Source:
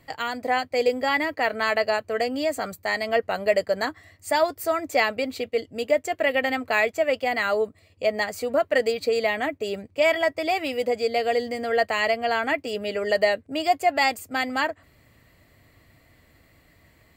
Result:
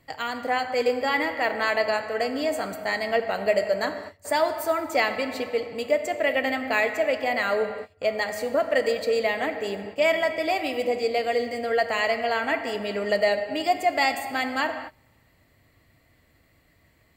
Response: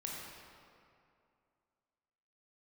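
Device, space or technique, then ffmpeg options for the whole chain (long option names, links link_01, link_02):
keyed gated reverb: -filter_complex "[0:a]asplit=3[link_01][link_02][link_03];[1:a]atrim=start_sample=2205[link_04];[link_02][link_04]afir=irnorm=-1:irlink=0[link_05];[link_03]apad=whole_len=757166[link_06];[link_05][link_06]sidechaingate=range=-27dB:threshold=-47dB:ratio=16:detection=peak,volume=-3dB[link_07];[link_01][link_07]amix=inputs=2:normalize=0,volume=-4.5dB"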